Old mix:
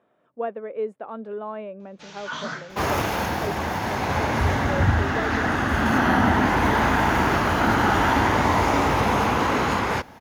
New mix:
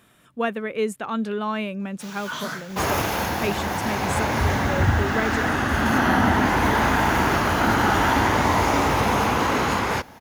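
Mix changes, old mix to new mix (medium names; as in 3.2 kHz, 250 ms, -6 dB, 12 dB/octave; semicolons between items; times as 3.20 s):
speech: remove band-pass filter 570 Hz, Q 1.7; first sound: remove steep low-pass 6.9 kHz; master: add treble shelf 5.5 kHz +6.5 dB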